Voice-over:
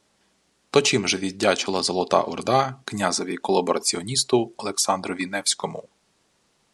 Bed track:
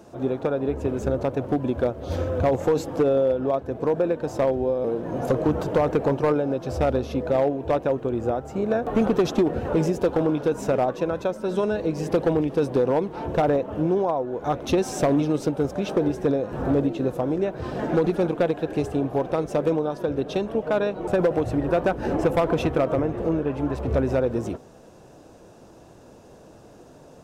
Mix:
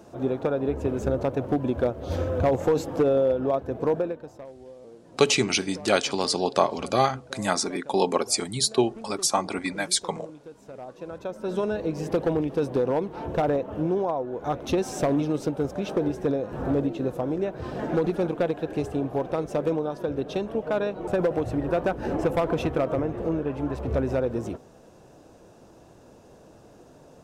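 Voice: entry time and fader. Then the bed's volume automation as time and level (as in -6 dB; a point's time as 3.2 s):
4.45 s, -2.0 dB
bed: 3.94 s -1 dB
4.46 s -21.5 dB
10.66 s -21.5 dB
11.49 s -3 dB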